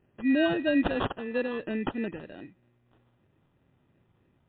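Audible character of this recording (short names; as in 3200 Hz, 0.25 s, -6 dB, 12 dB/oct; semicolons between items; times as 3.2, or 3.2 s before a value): phasing stages 2, 3.1 Hz, lowest notch 790–2300 Hz; aliases and images of a low sample rate 2200 Hz, jitter 0%; MP3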